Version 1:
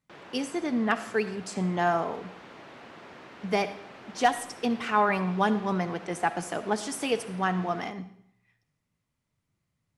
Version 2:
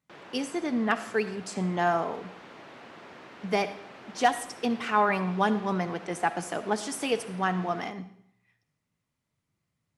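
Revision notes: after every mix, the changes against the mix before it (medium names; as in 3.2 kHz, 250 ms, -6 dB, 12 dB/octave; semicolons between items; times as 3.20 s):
master: add bass shelf 64 Hz -8.5 dB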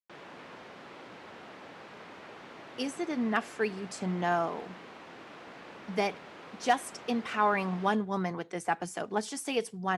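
speech: entry +2.45 s; reverb: off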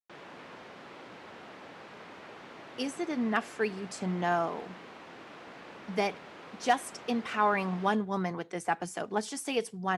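no change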